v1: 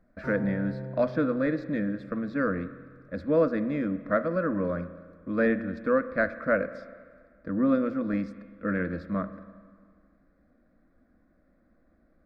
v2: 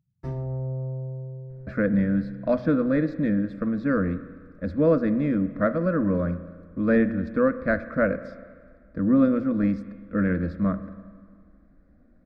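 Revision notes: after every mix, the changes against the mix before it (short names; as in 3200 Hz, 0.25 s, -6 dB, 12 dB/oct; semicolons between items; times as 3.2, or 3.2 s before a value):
speech: entry +1.50 s; master: add low shelf 250 Hz +11 dB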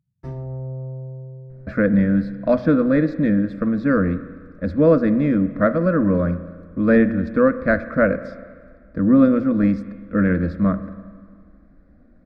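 speech +5.5 dB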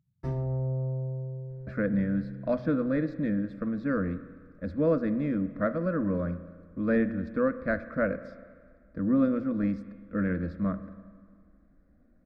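speech -10.5 dB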